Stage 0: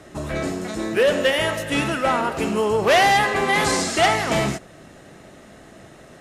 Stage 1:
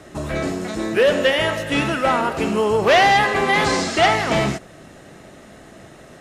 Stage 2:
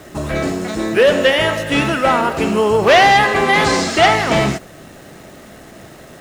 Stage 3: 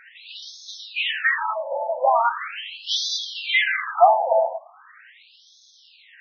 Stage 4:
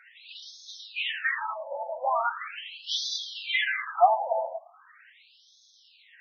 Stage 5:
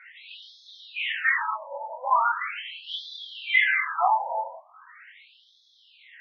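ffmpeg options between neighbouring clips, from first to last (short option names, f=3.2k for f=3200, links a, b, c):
-filter_complex "[0:a]acrossover=split=6200[a][b];[b]acompressor=threshold=-45dB:ratio=4:attack=1:release=60[c];[a][c]amix=inputs=2:normalize=0,volume=2dB"
-af "acrusher=bits=9:dc=4:mix=0:aa=0.000001,volume=4dB"
-af "afftfilt=real='re*between(b*sr/1024,670*pow(4700/670,0.5+0.5*sin(2*PI*0.4*pts/sr))/1.41,670*pow(4700/670,0.5+0.5*sin(2*PI*0.4*pts/sr))*1.41)':imag='im*between(b*sr/1024,670*pow(4700/670,0.5+0.5*sin(2*PI*0.4*pts/sr))/1.41,670*pow(4700/670,0.5+0.5*sin(2*PI*0.4*pts/sr))*1.41)':win_size=1024:overlap=0.75"
-af "highpass=f=530:p=1,flanger=delay=1.4:depth=7.6:regen=42:speed=0.43:shape=sinusoidal,volume=-2dB"
-filter_complex "[0:a]flanger=delay=22.5:depth=3.4:speed=0.4,acrossover=split=2900[a][b];[b]acompressor=threshold=-48dB:ratio=4:attack=1:release=60[c];[a][c]amix=inputs=2:normalize=0,highpass=420,equalizer=f=680:t=q:w=4:g=-9,equalizer=f=1k:t=q:w=4:g=9,equalizer=f=1.4k:t=q:w=4:g=4,equalizer=f=2.1k:t=q:w=4:g=9,equalizer=f=3.2k:t=q:w=4:g=4,lowpass=f=4.3k:w=0.5412,lowpass=f=4.3k:w=1.3066,volume=3dB"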